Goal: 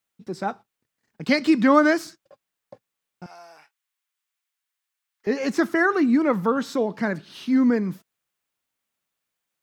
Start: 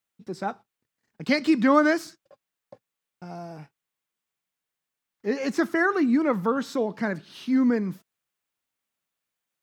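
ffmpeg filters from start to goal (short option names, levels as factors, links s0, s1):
-filter_complex "[0:a]asettb=1/sr,asplit=3[s0][s1][s2];[s0]atrim=end=3.264[s3];[s1]atrim=start=3.26:end=5.27,asetpts=PTS-STARTPTS,afade=t=in:d=0.004:c=qsin,afade=t=out:st=2.006:d=0.004:c=qsin,highpass=1100[s4];[s2]atrim=start=5.266[s5];[s3][s4]acrossfade=d=0.004:c1=hsin:c2=qsin[s6];[s6][s5]acrossfade=d=0.004:c1=qsin:c2=hsin,volume=1.33"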